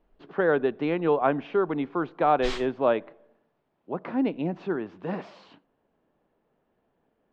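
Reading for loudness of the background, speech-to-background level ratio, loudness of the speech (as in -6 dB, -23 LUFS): -38.0 LUFS, 11.0 dB, -27.0 LUFS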